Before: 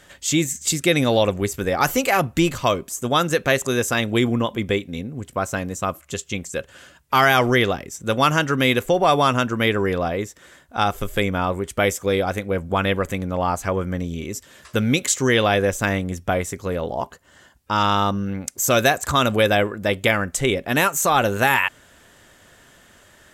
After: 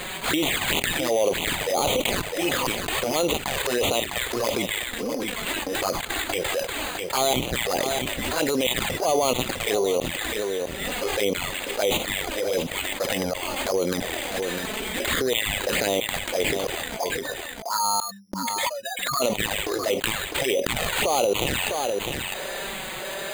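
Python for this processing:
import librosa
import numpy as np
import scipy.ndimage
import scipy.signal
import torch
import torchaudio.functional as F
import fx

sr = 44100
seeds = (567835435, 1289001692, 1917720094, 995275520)

y = fx.spec_expand(x, sr, power=3.9, at=(16.96, 19.22))
y = fx.filter_lfo_highpass(y, sr, shape='square', hz=1.5, low_hz=510.0, high_hz=6200.0, q=1.6)
y = np.repeat(y[::8], 8)[:len(y)]
y = fx.transient(y, sr, attack_db=-9, sustain_db=8)
y = fx.env_flanger(y, sr, rest_ms=5.7, full_db=-18.5)
y = fx.peak_eq(y, sr, hz=1300.0, db=-5.5, octaves=1.1)
y = y + 10.0 ** (-15.0 / 20.0) * np.pad(y, (int(655 * sr / 1000.0), 0))[:len(y)]
y = fx.env_flatten(y, sr, amount_pct=70)
y = y * librosa.db_to_amplitude(-4.5)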